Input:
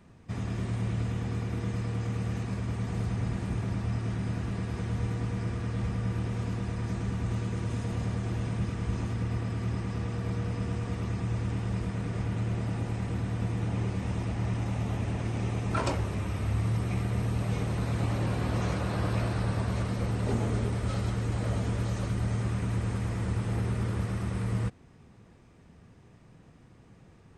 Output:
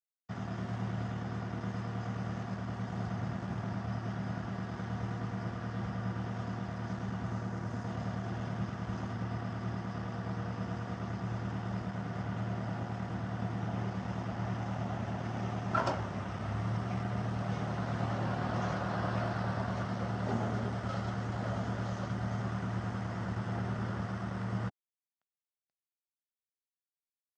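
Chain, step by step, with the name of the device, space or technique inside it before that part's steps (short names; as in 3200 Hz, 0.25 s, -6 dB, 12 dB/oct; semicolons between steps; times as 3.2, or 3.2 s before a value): blown loudspeaker (crossover distortion -44 dBFS; speaker cabinet 140–5600 Hz, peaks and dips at 300 Hz -6 dB, 450 Hz -7 dB, 710 Hz +5 dB, 1400 Hz +4 dB, 2400 Hz -9 dB, 4000 Hz -7 dB); 7.3–7.87 bell 3200 Hz -5.5 dB 0.77 oct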